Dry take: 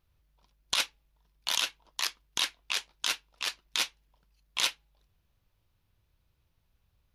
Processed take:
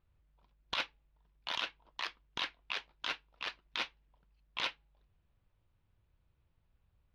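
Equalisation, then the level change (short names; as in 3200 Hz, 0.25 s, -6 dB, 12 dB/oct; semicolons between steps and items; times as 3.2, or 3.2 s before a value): air absorption 310 m; -1.0 dB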